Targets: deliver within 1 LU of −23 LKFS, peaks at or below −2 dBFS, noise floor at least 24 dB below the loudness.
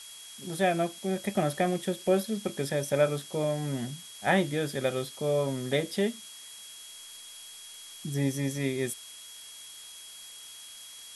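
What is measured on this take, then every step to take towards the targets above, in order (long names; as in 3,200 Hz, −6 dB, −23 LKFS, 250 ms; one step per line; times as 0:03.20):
interfering tone 3,300 Hz; level of the tone −48 dBFS; background noise floor −47 dBFS; target noise floor −54 dBFS; integrated loudness −30.0 LKFS; sample peak −11.5 dBFS; target loudness −23.0 LKFS
→ notch filter 3,300 Hz, Q 30
broadband denoise 7 dB, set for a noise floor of −47 dBFS
level +7 dB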